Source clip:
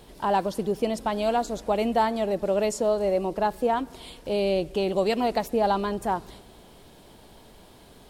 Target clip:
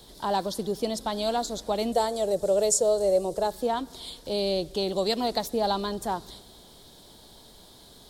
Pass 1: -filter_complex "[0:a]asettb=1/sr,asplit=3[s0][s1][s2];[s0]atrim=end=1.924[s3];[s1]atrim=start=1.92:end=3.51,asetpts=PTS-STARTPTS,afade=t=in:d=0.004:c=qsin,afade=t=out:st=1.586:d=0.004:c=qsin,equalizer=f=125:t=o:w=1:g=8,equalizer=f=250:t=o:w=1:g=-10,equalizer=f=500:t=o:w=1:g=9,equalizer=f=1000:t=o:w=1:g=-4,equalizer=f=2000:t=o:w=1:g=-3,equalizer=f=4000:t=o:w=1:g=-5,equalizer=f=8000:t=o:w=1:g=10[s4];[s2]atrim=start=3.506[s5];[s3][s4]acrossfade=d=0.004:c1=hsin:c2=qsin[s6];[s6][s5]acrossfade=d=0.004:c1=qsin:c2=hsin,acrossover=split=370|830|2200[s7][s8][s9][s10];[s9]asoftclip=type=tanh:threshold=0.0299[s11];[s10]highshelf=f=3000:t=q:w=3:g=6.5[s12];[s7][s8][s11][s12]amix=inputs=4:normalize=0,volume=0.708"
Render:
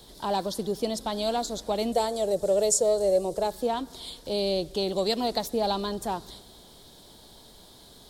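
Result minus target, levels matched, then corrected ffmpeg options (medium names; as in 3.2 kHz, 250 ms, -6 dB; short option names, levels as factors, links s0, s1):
saturation: distortion +14 dB
-filter_complex "[0:a]asettb=1/sr,asplit=3[s0][s1][s2];[s0]atrim=end=1.924[s3];[s1]atrim=start=1.92:end=3.51,asetpts=PTS-STARTPTS,afade=t=in:d=0.004:c=qsin,afade=t=out:st=1.586:d=0.004:c=qsin,equalizer=f=125:t=o:w=1:g=8,equalizer=f=250:t=o:w=1:g=-10,equalizer=f=500:t=o:w=1:g=9,equalizer=f=1000:t=o:w=1:g=-4,equalizer=f=2000:t=o:w=1:g=-3,equalizer=f=4000:t=o:w=1:g=-5,equalizer=f=8000:t=o:w=1:g=10[s4];[s2]atrim=start=3.506[s5];[s3][s4]acrossfade=d=0.004:c1=hsin:c2=qsin[s6];[s6][s5]acrossfade=d=0.004:c1=qsin:c2=hsin,acrossover=split=370|830|2200[s7][s8][s9][s10];[s9]asoftclip=type=tanh:threshold=0.0944[s11];[s10]highshelf=f=3000:t=q:w=3:g=6.5[s12];[s7][s8][s11][s12]amix=inputs=4:normalize=0,volume=0.708"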